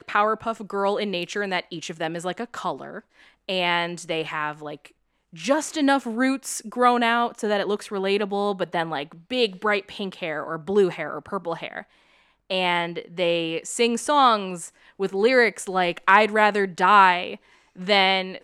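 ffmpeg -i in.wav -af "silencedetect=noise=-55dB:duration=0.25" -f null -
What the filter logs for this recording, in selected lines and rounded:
silence_start: 4.92
silence_end: 5.33 | silence_duration: 0.41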